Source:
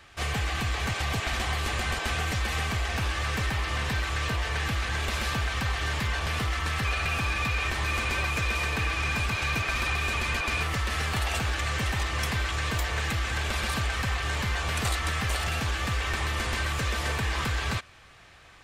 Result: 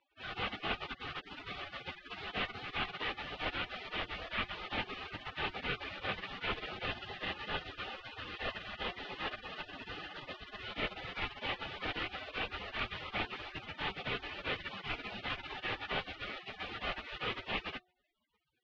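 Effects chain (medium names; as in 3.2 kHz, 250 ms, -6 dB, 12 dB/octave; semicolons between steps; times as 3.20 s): spectral gate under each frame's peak -30 dB weak; mistuned SSB -180 Hz 150–3100 Hz; de-hum 363 Hz, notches 2; trim +14.5 dB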